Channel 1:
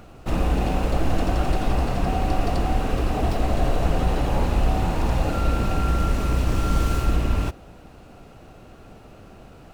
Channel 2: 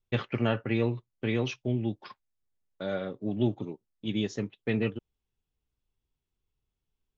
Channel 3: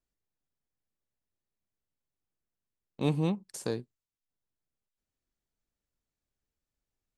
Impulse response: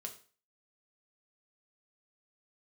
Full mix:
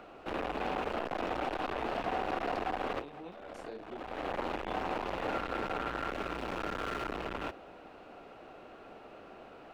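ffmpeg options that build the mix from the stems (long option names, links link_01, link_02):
-filter_complex "[0:a]asoftclip=type=hard:threshold=-25.5dB,volume=-1dB[link_01];[1:a]adelay=500,volume=-12dB[link_02];[2:a]alimiter=limit=-23dB:level=0:latency=1:release=145,volume=-2.5dB,asplit=2[link_03][link_04];[link_04]apad=whole_len=429123[link_05];[link_01][link_05]sidechaincompress=threshold=-50dB:ratio=8:attack=38:release=499[link_06];[link_02][link_03]amix=inputs=2:normalize=0,flanger=delay=18:depth=4.9:speed=0.42,alimiter=level_in=7.5dB:limit=-24dB:level=0:latency=1:release=386,volume=-7.5dB,volume=0dB[link_07];[link_06][link_07]amix=inputs=2:normalize=0,acrossover=split=280 3800:gain=0.1 1 0.141[link_08][link_09][link_10];[link_08][link_09][link_10]amix=inputs=3:normalize=0"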